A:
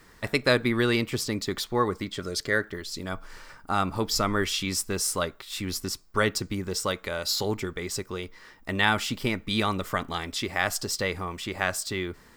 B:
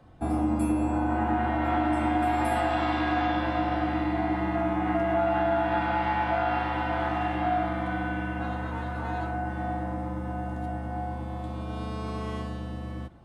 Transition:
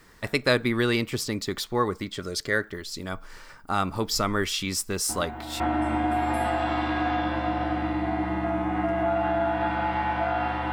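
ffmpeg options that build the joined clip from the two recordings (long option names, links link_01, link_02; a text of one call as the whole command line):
ffmpeg -i cue0.wav -i cue1.wav -filter_complex "[1:a]asplit=2[link_01][link_02];[0:a]apad=whole_dur=10.72,atrim=end=10.72,atrim=end=5.602[link_03];[link_02]atrim=start=1.708:end=6.83[link_04];[link_01]atrim=start=1.2:end=1.71,asetpts=PTS-STARTPTS,volume=-11dB,afade=type=in:duration=0.004:curve=hsin,afade=type=out:start_time=0.506:duration=0.004:curve=hsin,adelay=224469S[link_05];[link_03][link_04]acrossfade=duration=0.004:curve1=hsin:curve2=hsin[link_06];[link_06][link_05]amix=inputs=2:normalize=0" out.wav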